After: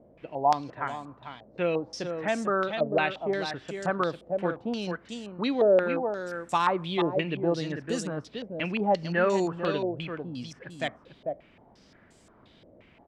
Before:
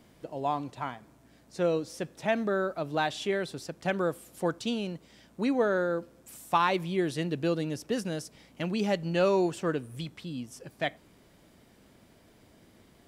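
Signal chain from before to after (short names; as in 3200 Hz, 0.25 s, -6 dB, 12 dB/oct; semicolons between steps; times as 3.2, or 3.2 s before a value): on a send: echo 0.446 s -7 dB; on the sum: stepped low-pass 5.7 Hz 580–7600 Hz; gain -1 dB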